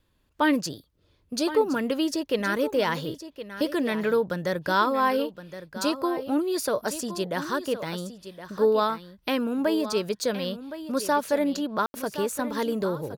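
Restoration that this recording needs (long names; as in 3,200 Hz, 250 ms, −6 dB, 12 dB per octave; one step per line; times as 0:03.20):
ambience match 0:11.86–0:11.94
echo removal 1,067 ms −12.5 dB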